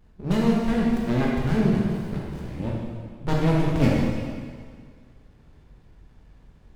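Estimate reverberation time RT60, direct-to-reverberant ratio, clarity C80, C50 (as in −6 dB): 1.9 s, −4.5 dB, 1.0 dB, −1.5 dB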